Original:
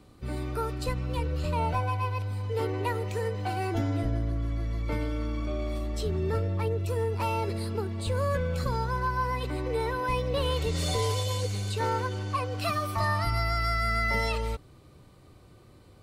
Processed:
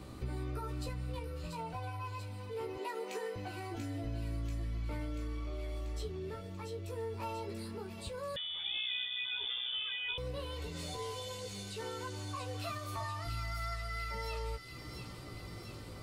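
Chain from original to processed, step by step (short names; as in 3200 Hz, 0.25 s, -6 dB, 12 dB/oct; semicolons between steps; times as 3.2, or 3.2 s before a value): 2.76–3.36 Bessel high-pass 350 Hz, order 8; in parallel at +1.5 dB: limiter -28 dBFS, peak gain reduction 10.5 dB; on the sum: compressor 6:1, threshold -39 dBFS, peak gain reduction 17 dB; chorus 0.35 Hz, delay 15.5 ms, depth 2.2 ms; on a send: thin delay 0.687 s, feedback 68%, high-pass 2700 Hz, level -4 dB; 8.36–10.18 on the sum: inverted band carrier 3500 Hz; gain +3 dB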